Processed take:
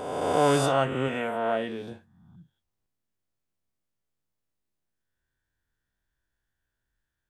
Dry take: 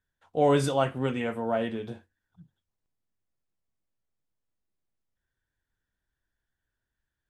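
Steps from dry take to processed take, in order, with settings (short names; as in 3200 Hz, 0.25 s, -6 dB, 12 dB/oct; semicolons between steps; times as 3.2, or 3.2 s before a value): spectral swells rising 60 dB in 1.58 s; 1.08–1.92 low shelf 140 Hz -9.5 dB; gain -1.5 dB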